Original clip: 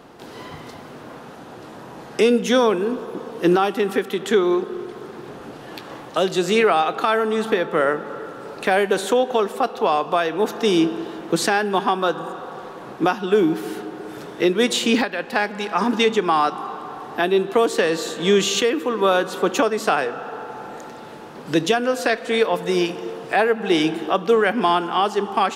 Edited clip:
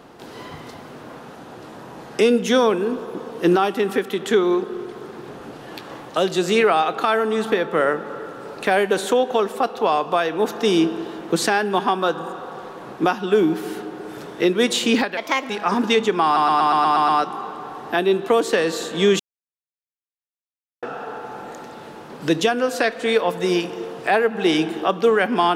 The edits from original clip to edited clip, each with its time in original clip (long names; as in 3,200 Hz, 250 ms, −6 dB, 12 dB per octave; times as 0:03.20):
0:15.17–0:15.59: play speed 129%
0:16.34: stutter 0.12 s, 8 plays
0:18.45–0:20.08: silence